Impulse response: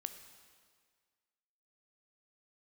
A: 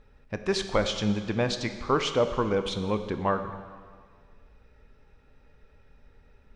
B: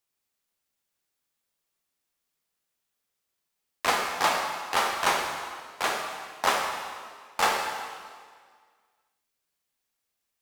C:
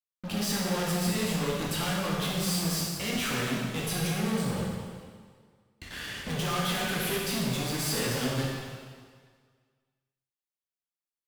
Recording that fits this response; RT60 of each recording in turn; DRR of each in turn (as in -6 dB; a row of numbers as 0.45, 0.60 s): A; 1.8, 1.8, 1.8 s; 8.0, 1.0, -4.0 dB